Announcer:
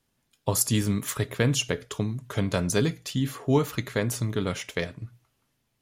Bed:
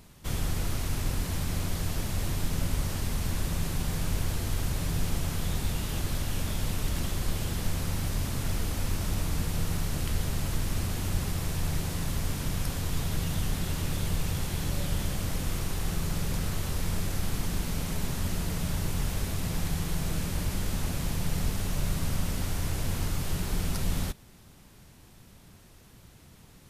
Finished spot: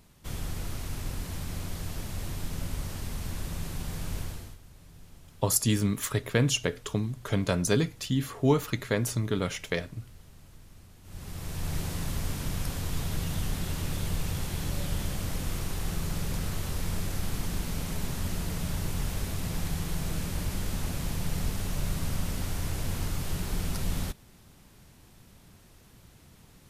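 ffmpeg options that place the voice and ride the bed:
-filter_complex "[0:a]adelay=4950,volume=-1dB[a];[1:a]volume=16dB,afade=t=out:st=4.19:d=0.39:silence=0.133352,afade=t=in:st=11.03:d=0.77:silence=0.0891251[b];[a][b]amix=inputs=2:normalize=0"

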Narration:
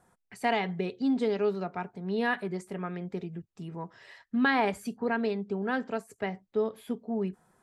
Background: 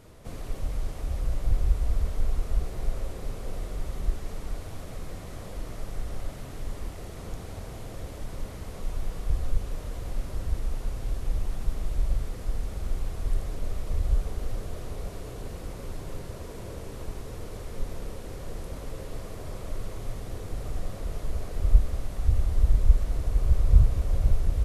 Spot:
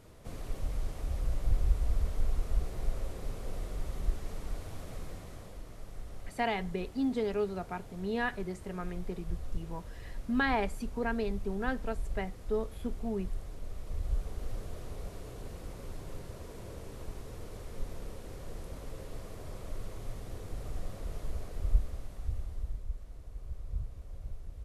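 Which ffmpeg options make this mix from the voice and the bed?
-filter_complex "[0:a]adelay=5950,volume=-4dB[a];[1:a]volume=0.5dB,afade=t=out:st=4.98:d=0.65:silence=0.473151,afade=t=in:st=13.67:d=0.88:silence=0.595662,afade=t=out:st=21.25:d=1.61:silence=0.211349[b];[a][b]amix=inputs=2:normalize=0"

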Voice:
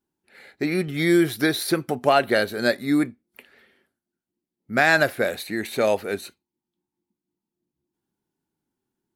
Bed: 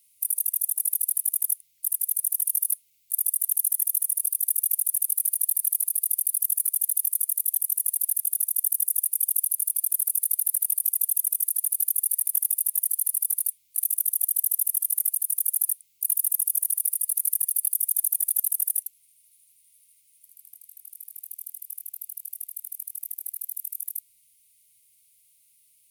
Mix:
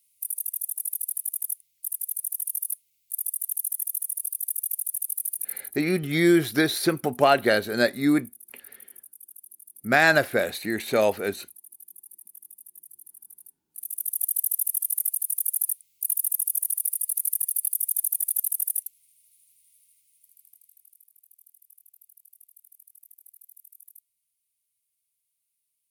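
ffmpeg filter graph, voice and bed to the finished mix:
-filter_complex "[0:a]adelay=5150,volume=-0.5dB[a];[1:a]volume=16.5dB,afade=t=out:st=5.31:d=0.48:silence=0.125893,afade=t=in:st=13.68:d=0.59:silence=0.0841395,afade=t=out:st=19.71:d=1.41:silence=0.158489[b];[a][b]amix=inputs=2:normalize=0"

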